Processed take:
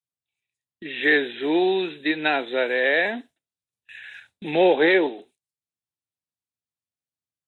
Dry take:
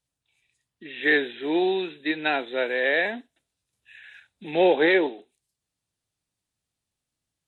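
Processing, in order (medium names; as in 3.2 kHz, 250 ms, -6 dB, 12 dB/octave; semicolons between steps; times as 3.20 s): high-pass 74 Hz 24 dB/octave; gate with hold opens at -45 dBFS; in parallel at +0.5 dB: compression, threshold -31 dBFS, peak gain reduction 15 dB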